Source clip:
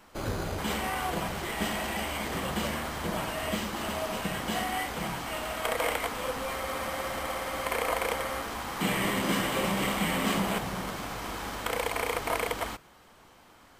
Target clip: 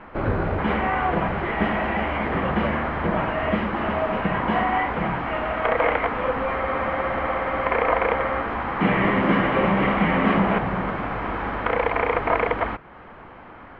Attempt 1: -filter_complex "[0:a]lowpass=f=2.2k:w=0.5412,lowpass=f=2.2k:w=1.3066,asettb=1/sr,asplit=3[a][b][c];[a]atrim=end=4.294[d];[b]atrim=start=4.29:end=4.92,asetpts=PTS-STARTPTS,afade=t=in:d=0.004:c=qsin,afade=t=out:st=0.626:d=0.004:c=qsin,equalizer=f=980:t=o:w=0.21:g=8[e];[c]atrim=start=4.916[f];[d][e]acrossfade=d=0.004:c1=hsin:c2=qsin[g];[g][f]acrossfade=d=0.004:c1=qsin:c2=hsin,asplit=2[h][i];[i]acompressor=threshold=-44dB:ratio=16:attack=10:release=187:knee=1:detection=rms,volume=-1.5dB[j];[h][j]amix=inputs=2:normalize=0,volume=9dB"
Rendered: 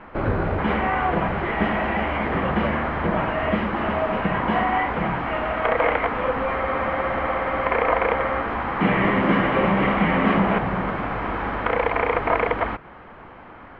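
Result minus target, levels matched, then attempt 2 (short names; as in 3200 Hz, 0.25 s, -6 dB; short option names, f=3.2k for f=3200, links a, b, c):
compressor: peak gain reduction -8 dB
-filter_complex "[0:a]lowpass=f=2.2k:w=0.5412,lowpass=f=2.2k:w=1.3066,asettb=1/sr,asplit=3[a][b][c];[a]atrim=end=4.294[d];[b]atrim=start=4.29:end=4.92,asetpts=PTS-STARTPTS,afade=t=in:d=0.004:c=qsin,afade=t=out:st=0.626:d=0.004:c=qsin,equalizer=f=980:t=o:w=0.21:g=8[e];[c]atrim=start=4.916[f];[d][e]acrossfade=d=0.004:c1=hsin:c2=qsin[g];[g][f]acrossfade=d=0.004:c1=qsin:c2=hsin,asplit=2[h][i];[i]acompressor=threshold=-52.5dB:ratio=16:attack=10:release=187:knee=1:detection=rms,volume=-1.5dB[j];[h][j]amix=inputs=2:normalize=0,volume=9dB"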